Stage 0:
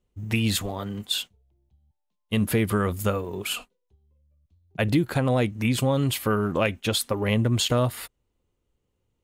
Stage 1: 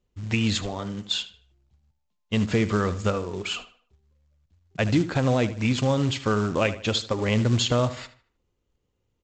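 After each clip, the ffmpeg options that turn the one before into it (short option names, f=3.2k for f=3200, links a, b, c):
-filter_complex "[0:a]asplit=2[a][b];[b]adelay=76,lowpass=f=3.8k:p=1,volume=-13.5dB,asplit=2[c][d];[d]adelay=76,lowpass=f=3.8k:p=1,volume=0.38,asplit=2[e][f];[f]adelay=76,lowpass=f=3.8k:p=1,volume=0.38,asplit=2[g][h];[h]adelay=76,lowpass=f=3.8k:p=1,volume=0.38[i];[a][c][e][g][i]amix=inputs=5:normalize=0,aresample=16000,acrusher=bits=5:mode=log:mix=0:aa=0.000001,aresample=44100"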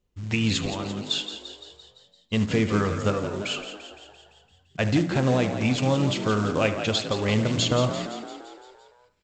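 -filter_complex "[0:a]bandreject=f=59.11:t=h:w=4,bandreject=f=118.22:t=h:w=4,bandreject=f=177.33:t=h:w=4,bandreject=f=236.44:t=h:w=4,bandreject=f=295.55:t=h:w=4,bandreject=f=354.66:t=h:w=4,bandreject=f=413.77:t=h:w=4,bandreject=f=472.88:t=h:w=4,bandreject=f=531.99:t=h:w=4,bandreject=f=591.1:t=h:w=4,bandreject=f=650.21:t=h:w=4,bandreject=f=709.32:t=h:w=4,bandreject=f=768.43:t=h:w=4,bandreject=f=827.54:t=h:w=4,bandreject=f=886.65:t=h:w=4,bandreject=f=945.76:t=h:w=4,bandreject=f=1.00487k:t=h:w=4,bandreject=f=1.06398k:t=h:w=4,bandreject=f=1.12309k:t=h:w=4,bandreject=f=1.1822k:t=h:w=4,bandreject=f=1.24131k:t=h:w=4,bandreject=f=1.30042k:t=h:w=4,bandreject=f=1.35953k:t=h:w=4,bandreject=f=1.41864k:t=h:w=4,bandreject=f=1.47775k:t=h:w=4,bandreject=f=1.53686k:t=h:w=4,bandreject=f=1.59597k:t=h:w=4,bandreject=f=1.65508k:t=h:w=4,bandreject=f=1.71419k:t=h:w=4,bandreject=f=1.7733k:t=h:w=4,bandreject=f=1.83241k:t=h:w=4,bandreject=f=1.89152k:t=h:w=4,bandreject=f=1.95063k:t=h:w=4,bandreject=f=2.00974k:t=h:w=4,bandreject=f=2.06885k:t=h:w=4,bandreject=f=2.12796k:t=h:w=4,bandreject=f=2.18707k:t=h:w=4,bandreject=f=2.24618k:t=h:w=4,asplit=2[a][b];[b]asplit=7[c][d][e][f][g][h][i];[c]adelay=171,afreqshift=52,volume=-10dB[j];[d]adelay=342,afreqshift=104,volume=-14.6dB[k];[e]adelay=513,afreqshift=156,volume=-19.2dB[l];[f]adelay=684,afreqshift=208,volume=-23.7dB[m];[g]adelay=855,afreqshift=260,volume=-28.3dB[n];[h]adelay=1026,afreqshift=312,volume=-32.9dB[o];[i]adelay=1197,afreqshift=364,volume=-37.5dB[p];[j][k][l][m][n][o][p]amix=inputs=7:normalize=0[q];[a][q]amix=inputs=2:normalize=0"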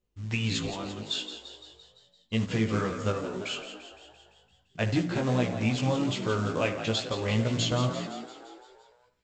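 -af "flanger=delay=16:depth=2.1:speed=2.4,volume=-1.5dB"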